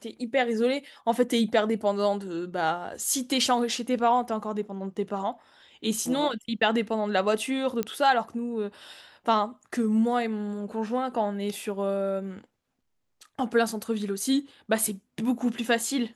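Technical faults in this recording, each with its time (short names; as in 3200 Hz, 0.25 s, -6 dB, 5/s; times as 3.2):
7.83 pop -14 dBFS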